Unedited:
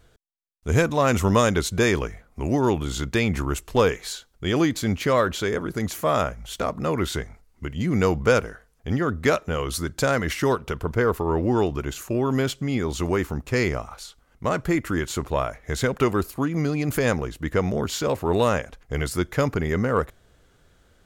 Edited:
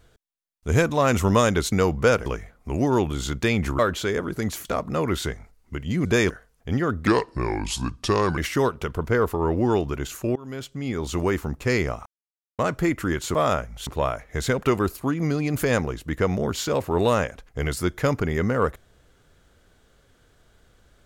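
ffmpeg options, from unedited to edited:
-filter_complex "[0:a]asplit=14[s0][s1][s2][s3][s4][s5][s6][s7][s8][s9][s10][s11][s12][s13];[s0]atrim=end=1.722[s14];[s1]atrim=start=7.948:end=8.492[s15];[s2]atrim=start=1.968:end=3.502[s16];[s3]atrim=start=5.168:end=6.032[s17];[s4]atrim=start=6.548:end=7.952[s18];[s5]atrim=start=1.718:end=1.972[s19];[s6]atrim=start=8.488:end=9.264[s20];[s7]atrim=start=9.26:end=10.24,asetpts=PTS-STARTPTS,asetrate=33075,aresample=44100[s21];[s8]atrim=start=10.236:end=12.22,asetpts=PTS-STARTPTS,afade=t=out:st=1.98:d=0.004:c=hsin:silence=0.0668344[s22];[s9]atrim=start=12.22:end=13.92,asetpts=PTS-STARTPTS,afade=t=in:d=0.83:silence=0.0668344,afade=t=out:st=1.696:d=0.004:c=hsin[s23];[s10]atrim=start=13.92:end=14.45,asetpts=PTS-STARTPTS,volume=0[s24];[s11]atrim=start=14.45:end=15.212,asetpts=PTS-STARTPTS,afade=t=in:d=0.004:c=hsin[s25];[s12]atrim=start=6.028:end=6.552[s26];[s13]atrim=start=15.208[s27];[s14][s15]acrossfade=d=0.004:c1=hsin:c2=hsin[s28];[s28][s16]acrossfade=d=0.004:c1=hsin:c2=hsin[s29];[s29][s17]acrossfade=d=0.004:c1=hsin:c2=hsin[s30];[s30][s18]acrossfade=d=0.004:c1=hsin:c2=hsin[s31];[s31][s19]acrossfade=d=0.004:c1=hsin:c2=hsin[s32];[s32][s20]acrossfade=d=0.004:c1=hsin:c2=hsin[s33];[s33][s21]acrossfade=d=0.004:c1=hsin:c2=hsin[s34];[s22][s23][s24][s25]concat=n=4:v=0:a=1[s35];[s34][s35]acrossfade=d=0.004:c1=hsin:c2=hsin[s36];[s36][s26]acrossfade=d=0.004:c1=hsin:c2=hsin[s37];[s37][s27]acrossfade=d=0.004:c1=hsin:c2=hsin"

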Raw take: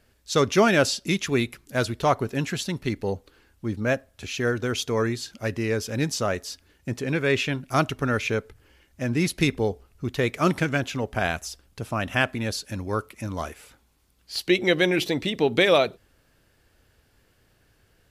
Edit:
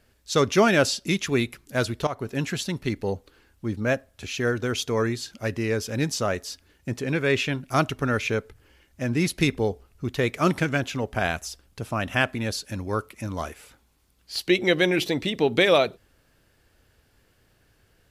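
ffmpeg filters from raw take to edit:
-filter_complex "[0:a]asplit=2[s0][s1];[s0]atrim=end=2.07,asetpts=PTS-STARTPTS,afade=t=out:st=2.066:d=0.004:c=hsin:silence=0.149624[s2];[s1]atrim=start=2.07,asetpts=PTS-STARTPTS,afade=t=in:d=0.43:c=qsin:silence=0.149624[s3];[s2][s3]concat=n=2:v=0:a=1"

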